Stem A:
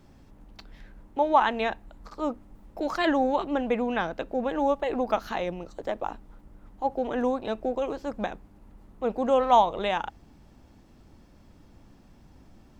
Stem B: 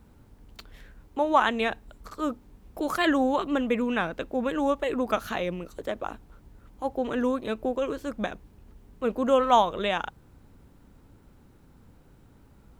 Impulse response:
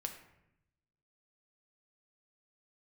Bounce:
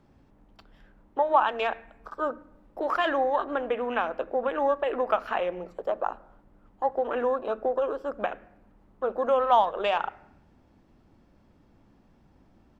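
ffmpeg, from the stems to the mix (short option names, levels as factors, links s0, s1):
-filter_complex "[0:a]lowpass=f=2300:p=1,volume=0.668[s0];[1:a]afwtdn=0.0158,bass=f=250:g=-8,treble=f=4000:g=-8,acompressor=threshold=0.0501:ratio=6,volume=-1,adelay=0.4,volume=0.944,asplit=2[s1][s2];[s2]volume=0.596[s3];[2:a]atrim=start_sample=2205[s4];[s3][s4]afir=irnorm=-1:irlink=0[s5];[s0][s1][s5]amix=inputs=3:normalize=0,lowshelf=f=92:g=-7"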